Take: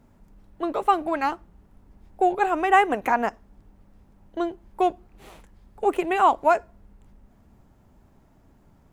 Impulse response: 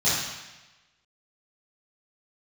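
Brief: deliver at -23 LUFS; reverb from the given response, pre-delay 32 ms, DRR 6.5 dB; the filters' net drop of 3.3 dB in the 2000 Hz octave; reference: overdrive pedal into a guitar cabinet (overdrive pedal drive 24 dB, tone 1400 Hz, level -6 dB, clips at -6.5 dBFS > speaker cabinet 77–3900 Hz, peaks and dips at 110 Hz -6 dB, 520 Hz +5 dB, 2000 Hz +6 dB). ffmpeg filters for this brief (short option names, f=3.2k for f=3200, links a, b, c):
-filter_complex "[0:a]equalizer=f=2k:t=o:g=-8,asplit=2[a][b];[1:a]atrim=start_sample=2205,adelay=32[c];[b][c]afir=irnorm=-1:irlink=0,volume=-21.5dB[d];[a][d]amix=inputs=2:normalize=0,asplit=2[e][f];[f]highpass=f=720:p=1,volume=24dB,asoftclip=type=tanh:threshold=-6.5dB[g];[e][g]amix=inputs=2:normalize=0,lowpass=f=1.4k:p=1,volume=-6dB,highpass=77,equalizer=f=110:t=q:w=4:g=-6,equalizer=f=520:t=q:w=4:g=5,equalizer=f=2k:t=q:w=4:g=6,lowpass=f=3.9k:w=0.5412,lowpass=f=3.9k:w=1.3066,volume=-6dB"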